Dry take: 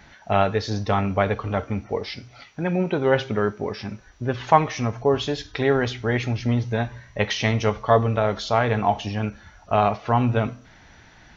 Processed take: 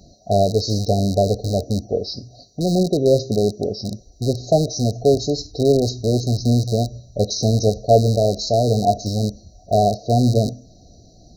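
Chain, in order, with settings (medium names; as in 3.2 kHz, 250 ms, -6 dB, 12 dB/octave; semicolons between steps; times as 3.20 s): rattle on loud lows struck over -28 dBFS, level -11 dBFS; dynamic bell 5.8 kHz, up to +4 dB, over -42 dBFS, Q 1.3; brick-wall FIR band-stop 760–3800 Hz; trim +5 dB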